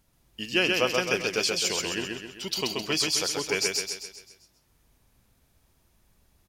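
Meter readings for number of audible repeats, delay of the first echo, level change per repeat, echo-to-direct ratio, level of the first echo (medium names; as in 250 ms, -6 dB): 6, 131 ms, -6.5 dB, -2.0 dB, -3.0 dB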